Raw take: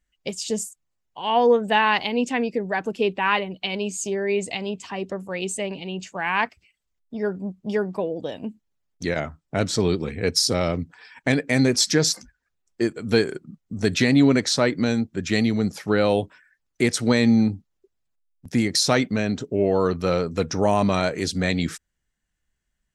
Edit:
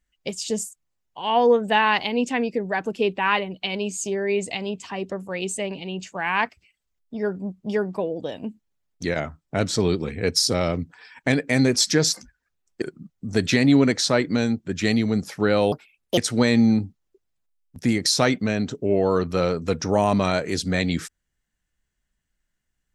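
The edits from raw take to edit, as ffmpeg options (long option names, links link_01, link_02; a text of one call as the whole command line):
ffmpeg -i in.wav -filter_complex "[0:a]asplit=4[link_01][link_02][link_03][link_04];[link_01]atrim=end=12.822[link_05];[link_02]atrim=start=13.298:end=16.204[link_06];[link_03]atrim=start=16.2:end=16.87,asetpts=PTS-STARTPTS,asetrate=64827,aresample=44100[link_07];[link_04]atrim=start=16.866[link_08];[link_05][link_06]acrossfade=duration=0.004:curve1=hsin:curve2=hsin[link_09];[link_09][link_07]acrossfade=duration=0.004:curve1=hsin:curve2=hsin[link_10];[link_10][link_08]acrossfade=duration=0.004:curve1=hsin:curve2=hsin" out.wav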